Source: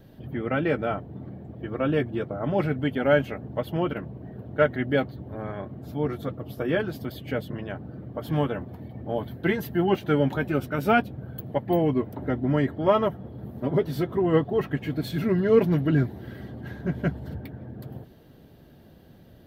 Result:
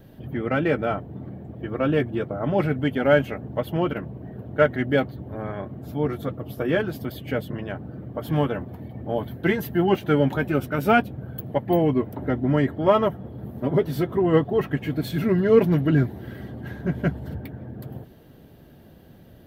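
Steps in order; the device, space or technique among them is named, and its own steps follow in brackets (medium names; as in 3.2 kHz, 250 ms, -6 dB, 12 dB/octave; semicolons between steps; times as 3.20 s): exciter from parts (in parallel at -9.5 dB: high-pass 2.8 kHz 6 dB/octave + saturation -38.5 dBFS, distortion -6 dB + high-pass 3.5 kHz 24 dB/octave); on the sum: trim +2.5 dB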